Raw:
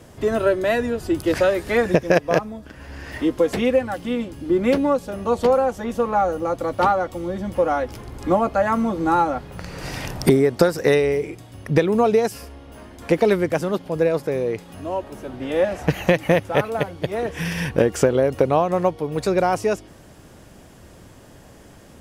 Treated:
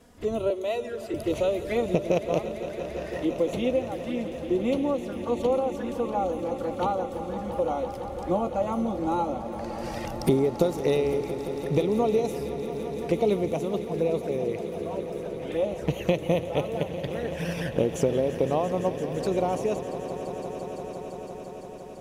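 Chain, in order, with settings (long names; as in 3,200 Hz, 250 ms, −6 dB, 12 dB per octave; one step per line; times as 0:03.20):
0:00.50–0:01.14: high-pass filter 360 Hz 24 dB per octave
flanger swept by the level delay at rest 4.9 ms, full sweep at −18.5 dBFS
echo that builds up and dies away 170 ms, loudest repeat 5, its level −15 dB
level −6 dB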